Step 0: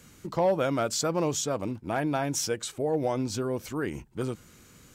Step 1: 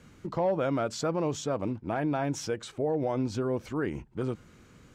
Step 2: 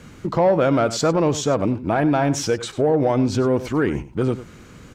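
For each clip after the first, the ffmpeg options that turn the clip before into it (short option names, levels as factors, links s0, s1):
-af "aemphasis=mode=reproduction:type=75fm,alimiter=limit=0.0944:level=0:latency=1:release=72"
-filter_complex "[0:a]aecho=1:1:97:0.168,asplit=2[s0][s1];[s1]asoftclip=type=tanh:threshold=0.0398,volume=0.447[s2];[s0][s2]amix=inputs=2:normalize=0,volume=2.66"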